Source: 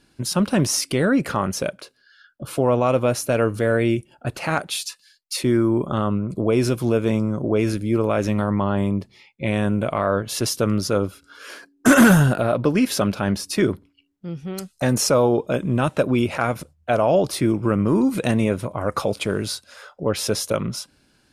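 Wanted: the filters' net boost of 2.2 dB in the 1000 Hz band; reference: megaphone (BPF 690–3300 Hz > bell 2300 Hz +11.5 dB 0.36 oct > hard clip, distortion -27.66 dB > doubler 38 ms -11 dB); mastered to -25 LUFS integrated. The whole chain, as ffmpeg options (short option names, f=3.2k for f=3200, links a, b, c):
-filter_complex "[0:a]highpass=690,lowpass=3.3k,equalizer=f=1k:t=o:g=4,equalizer=f=2.3k:t=o:w=0.36:g=11.5,asoftclip=type=hard:threshold=-8.5dB,asplit=2[a][b];[b]adelay=38,volume=-11dB[c];[a][c]amix=inputs=2:normalize=0"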